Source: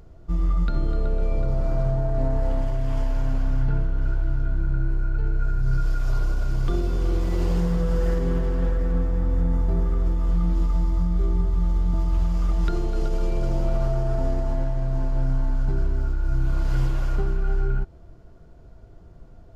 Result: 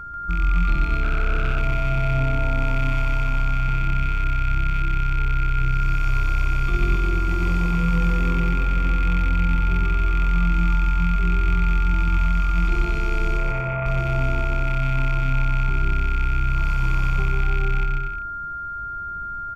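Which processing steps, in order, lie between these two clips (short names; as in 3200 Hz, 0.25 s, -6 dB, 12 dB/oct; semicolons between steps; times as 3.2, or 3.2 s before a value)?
rattling part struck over -27 dBFS, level -20 dBFS; 13.37–13.86 speaker cabinet 120–2200 Hz, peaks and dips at 220 Hz -9 dB, 340 Hz -9 dB, 540 Hz +5 dB; limiter -18 dBFS, peak gain reduction 7 dB; whine 1400 Hz -34 dBFS; comb 0.9 ms, depth 49%; bouncing-ball echo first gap 0.14 s, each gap 0.7×, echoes 5; 1.03–1.6 Doppler distortion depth 0.34 ms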